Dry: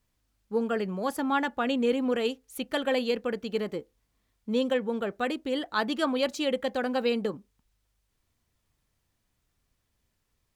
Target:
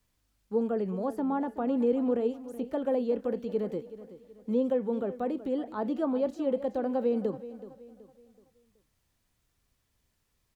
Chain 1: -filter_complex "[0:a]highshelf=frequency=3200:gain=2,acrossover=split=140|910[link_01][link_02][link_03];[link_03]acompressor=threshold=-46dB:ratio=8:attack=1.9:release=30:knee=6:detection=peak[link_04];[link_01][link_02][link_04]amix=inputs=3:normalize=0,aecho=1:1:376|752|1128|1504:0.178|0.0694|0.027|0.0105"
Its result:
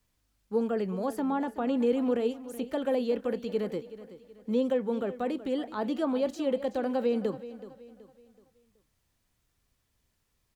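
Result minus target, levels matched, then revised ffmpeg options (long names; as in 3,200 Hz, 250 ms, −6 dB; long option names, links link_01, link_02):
downward compressor: peak gain reduction −10.5 dB
-filter_complex "[0:a]highshelf=frequency=3200:gain=2,acrossover=split=140|910[link_01][link_02][link_03];[link_03]acompressor=threshold=-58dB:ratio=8:attack=1.9:release=30:knee=6:detection=peak[link_04];[link_01][link_02][link_04]amix=inputs=3:normalize=0,aecho=1:1:376|752|1128|1504:0.178|0.0694|0.027|0.0105"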